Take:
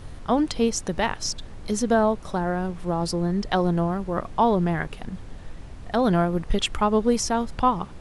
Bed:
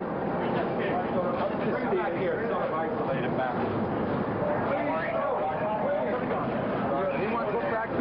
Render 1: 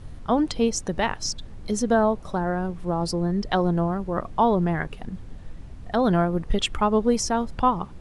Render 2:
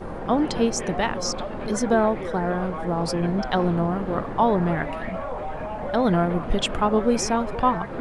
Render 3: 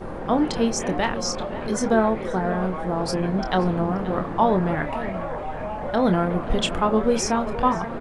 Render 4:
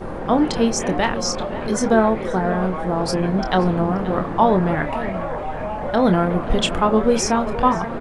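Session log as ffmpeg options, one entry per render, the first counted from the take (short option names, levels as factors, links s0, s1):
-af "afftdn=nr=6:nf=-40"
-filter_complex "[1:a]volume=0.668[s0];[0:a][s0]amix=inputs=2:normalize=0"
-filter_complex "[0:a]asplit=2[s0][s1];[s1]adelay=27,volume=0.335[s2];[s0][s2]amix=inputs=2:normalize=0,asplit=2[s3][s4];[s4]adelay=530.6,volume=0.224,highshelf=f=4000:g=-11.9[s5];[s3][s5]amix=inputs=2:normalize=0"
-af "volume=1.5"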